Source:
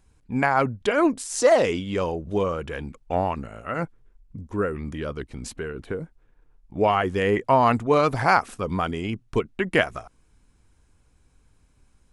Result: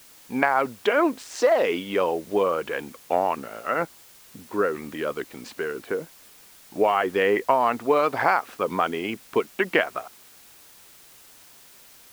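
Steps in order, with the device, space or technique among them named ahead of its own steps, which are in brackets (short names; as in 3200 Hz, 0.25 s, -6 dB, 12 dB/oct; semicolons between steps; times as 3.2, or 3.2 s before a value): baby monitor (BPF 350–3400 Hz; compressor, threshold -21 dBFS, peak gain reduction 9 dB; white noise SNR 25 dB); gain +5 dB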